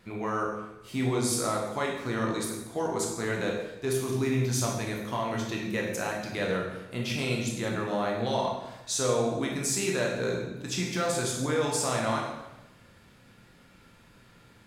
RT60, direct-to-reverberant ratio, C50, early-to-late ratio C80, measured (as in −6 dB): 0.95 s, −1.5 dB, 3.0 dB, 5.0 dB